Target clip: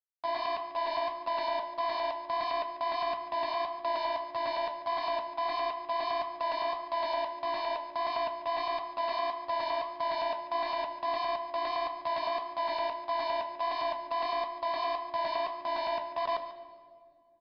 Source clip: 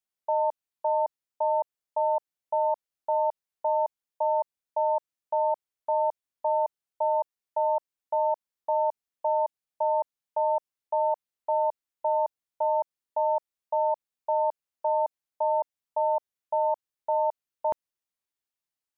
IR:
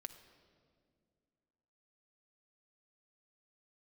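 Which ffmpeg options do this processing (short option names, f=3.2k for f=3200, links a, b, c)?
-filter_complex "[0:a]highpass=f=830:p=1,aemphasis=mode=production:type=75fm,asplit=2[a][b];[b]acompressor=threshold=-42dB:ratio=16,volume=2dB[c];[a][c]amix=inputs=2:normalize=0,afreqshift=-29,asetrate=48069,aresample=44100,acrusher=bits=4:mix=0:aa=0.5,asetrate=46722,aresample=44100,atempo=0.943874,flanger=delay=6.8:depth=9.9:regen=-61:speed=1.6:shape=triangular,aecho=1:1:144:0.188,asplit=2[d][e];[1:a]atrim=start_sample=2205,adelay=111[f];[e][f]afir=irnorm=-1:irlink=0,volume=6.5dB[g];[d][g]amix=inputs=2:normalize=0,aresample=11025,aresample=44100"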